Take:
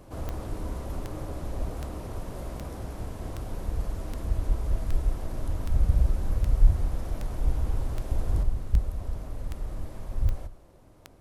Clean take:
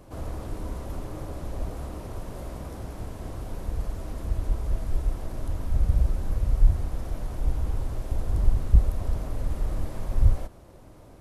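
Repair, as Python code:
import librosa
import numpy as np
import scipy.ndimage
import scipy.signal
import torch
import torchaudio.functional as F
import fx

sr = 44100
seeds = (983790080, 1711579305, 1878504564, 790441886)

y = fx.fix_declick_ar(x, sr, threshold=10.0)
y = fx.fix_echo_inverse(y, sr, delay_ms=202, level_db=-19.0)
y = fx.fix_level(y, sr, at_s=8.43, step_db=6.0)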